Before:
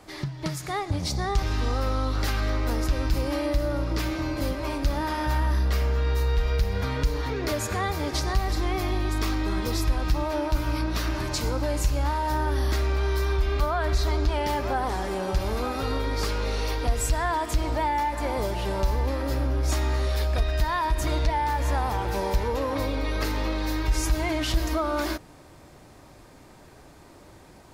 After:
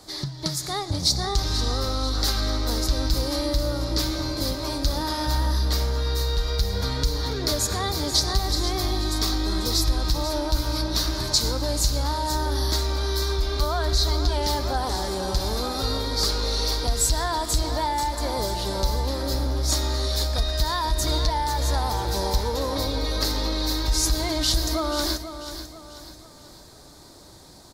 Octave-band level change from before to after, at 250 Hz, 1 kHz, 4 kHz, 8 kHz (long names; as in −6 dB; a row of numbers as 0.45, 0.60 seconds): +0.5, 0.0, +10.5, +9.0 decibels